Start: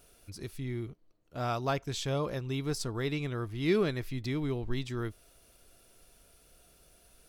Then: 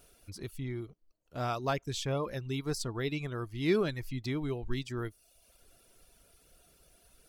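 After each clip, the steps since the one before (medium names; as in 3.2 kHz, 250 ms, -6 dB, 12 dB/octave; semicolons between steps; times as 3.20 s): reverb removal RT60 0.71 s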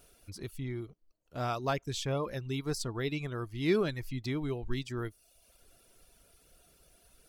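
no audible change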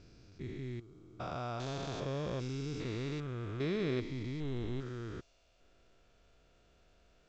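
spectrogram pixelated in time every 400 ms; level-controlled noise filter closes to 3 kHz, open at -36 dBFS; µ-law 128 kbps 16 kHz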